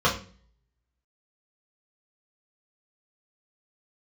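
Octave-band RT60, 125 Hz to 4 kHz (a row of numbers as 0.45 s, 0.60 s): 0.65 s, 0.60 s, 0.45 s, 0.35 s, 0.40 s, 0.40 s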